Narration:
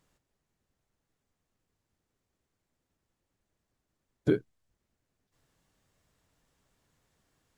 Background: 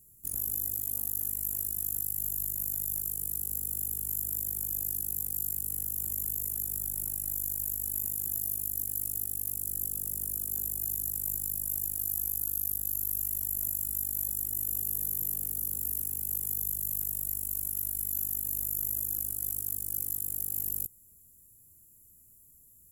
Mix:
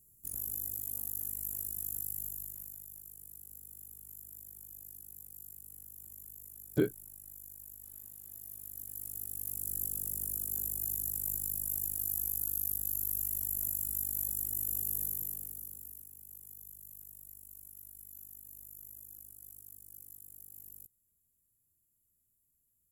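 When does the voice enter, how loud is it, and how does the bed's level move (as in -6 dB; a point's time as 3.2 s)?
2.50 s, -3.0 dB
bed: 2.14 s -5.5 dB
2.9 s -17 dB
8.23 s -17 dB
9.73 s -2.5 dB
15.02 s -2.5 dB
16.09 s -18.5 dB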